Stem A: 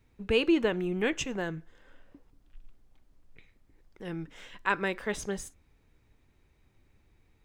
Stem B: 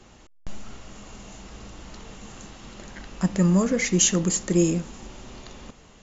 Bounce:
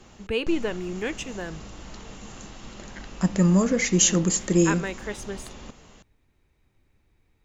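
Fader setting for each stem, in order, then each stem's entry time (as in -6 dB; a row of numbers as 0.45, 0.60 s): -1.0, +0.5 dB; 0.00, 0.00 s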